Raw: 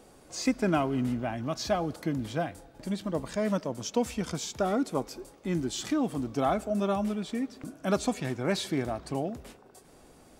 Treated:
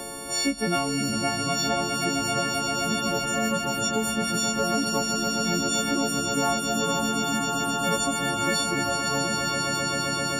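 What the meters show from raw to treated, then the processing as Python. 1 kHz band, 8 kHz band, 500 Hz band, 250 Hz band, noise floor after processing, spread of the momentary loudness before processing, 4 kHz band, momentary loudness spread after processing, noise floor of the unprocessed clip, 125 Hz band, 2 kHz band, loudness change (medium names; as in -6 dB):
+8.5 dB, +14.0 dB, +2.0 dB, +2.5 dB, -29 dBFS, 8 LU, +14.0 dB, 2 LU, -56 dBFS, +2.5 dB, +11.5 dB, +6.5 dB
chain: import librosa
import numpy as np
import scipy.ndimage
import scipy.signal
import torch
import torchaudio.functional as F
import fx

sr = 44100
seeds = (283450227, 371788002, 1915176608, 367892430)

y = fx.freq_snap(x, sr, grid_st=4)
y = fx.echo_swell(y, sr, ms=131, loudest=8, wet_db=-12.0)
y = fx.band_squash(y, sr, depth_pct=70)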